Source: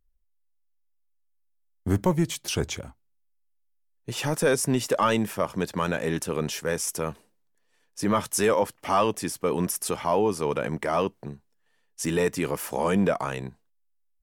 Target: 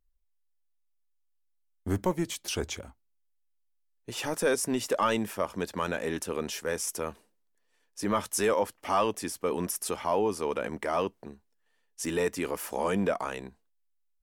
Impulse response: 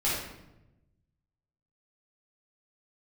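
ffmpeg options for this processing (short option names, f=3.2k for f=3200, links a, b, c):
-af "equalizer=f=140:w=3.3:g=-14.5,volume=-3.5dB"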